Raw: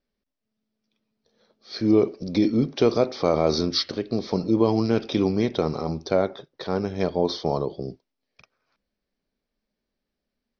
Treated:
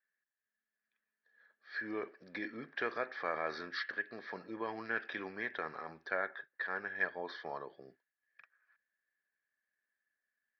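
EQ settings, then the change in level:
resonant band-pass 1,700 Hz, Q 19
high-frequency loss of the air 150 metres
+16.5 dB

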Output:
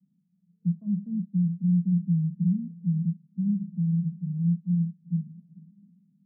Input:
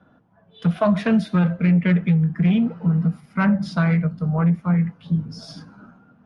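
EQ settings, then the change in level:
flat-topped band-pass 180 Hz, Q 3.4
high-frequency loss of the air 380 metres
−5.5 dB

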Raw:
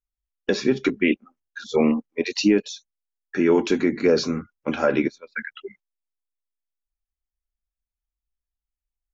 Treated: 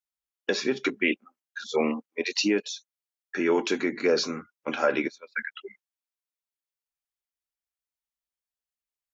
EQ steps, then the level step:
high-pass filter 620 Hz 6 dB per octave
0.0 dB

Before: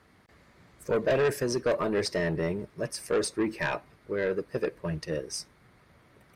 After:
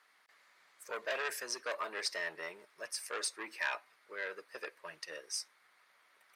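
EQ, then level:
high-pass filter 1,100 Hz 12 dB per octave
−2.5 dB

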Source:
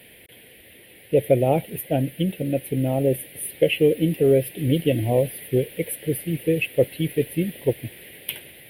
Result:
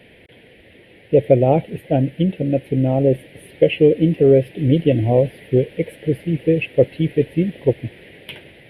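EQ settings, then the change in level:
head-to-tape spacing loss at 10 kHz 24 dB
+6.0 dB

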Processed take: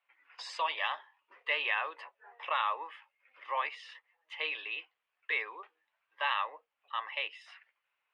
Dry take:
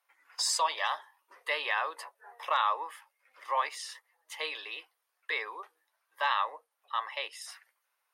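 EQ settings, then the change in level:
low-pass with resonance 2,700 Hz, resonance Q 3
low-shelf EQ 310 Hz +8 dB
−6.0 dB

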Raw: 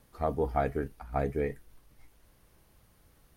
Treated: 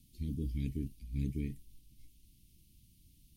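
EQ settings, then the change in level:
inverse Chebyshev band-stop filter 540–1,500 Hz, stop band 50 dB
0.0 dB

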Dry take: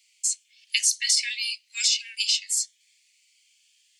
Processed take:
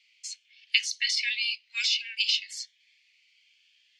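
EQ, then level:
dynamic equaliser 1,800 Hz, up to −5 dB, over −46 dBFS, Q 3.4
high-frequency loss of the air 270 metres
+7.0 dB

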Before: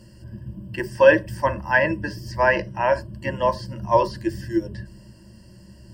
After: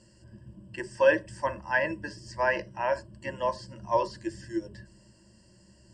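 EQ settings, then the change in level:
low-pass with resonance 7,800 Hz, resonance Q 4.9
high-frequency loss of the air 52 metres
bass and treble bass −6 dB, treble 0 dB
−7.5 dB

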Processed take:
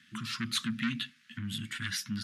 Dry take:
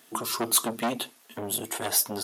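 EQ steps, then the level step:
elliptic band-stop filter 210–1,600 Hz, stop band 70 dB
low-pass filter 3,200 Hz 12 dB per octave
low-shelf EQ 170 Hz +5 dB
+3.0 dB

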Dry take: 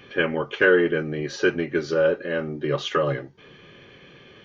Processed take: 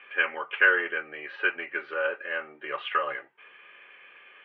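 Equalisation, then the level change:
high-pass filter 1,100 Hz 12 dB per octave
elliptic low-pass filter 2,700 Hz, stop band 80 dB
+2.5 dB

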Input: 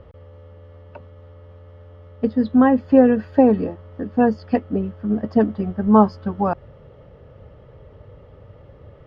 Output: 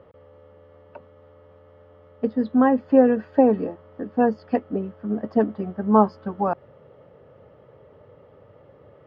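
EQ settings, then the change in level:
high-pass filter 100 Hz
low-shelf EQ 170 Hz −12 dB
high-shelf EQ 2,700 Hz −10.5 dB
0.0 dB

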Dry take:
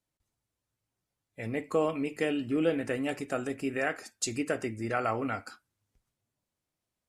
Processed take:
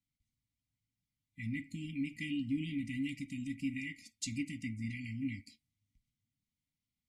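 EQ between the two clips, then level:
linear-phase brick-wall band-stop 300–1,900 Hz
high-shelf EQ 5,300 Hz −11 dB
notch filter 2,600 Hz, Q 16
−1.5 dB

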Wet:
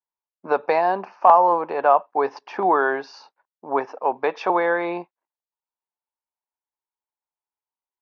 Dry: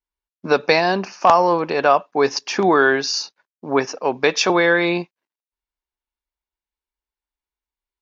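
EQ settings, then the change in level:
resonant band-pass 770 Hz, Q 0.92
high-frequency loss of the air 130 metres
parametric band 890 Hz +5.5 dB 0.62 octaves
−2.0 dB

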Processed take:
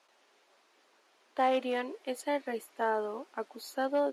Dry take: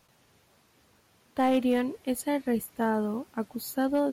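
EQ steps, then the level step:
high-pass filter 360 Hz 24 dB per octave
high-frequency loss of the air 64 metres
notch filter 480 Hz, Q 12
0.0 dB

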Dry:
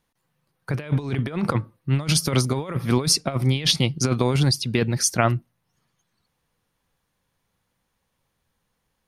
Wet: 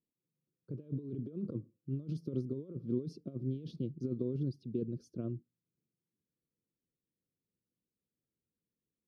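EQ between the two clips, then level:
inverse Chebyshev low-pass filter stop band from 750 Hz, stop band 40 dB
high-frequency loss of the air 300 metres
first difference
+17.5 dB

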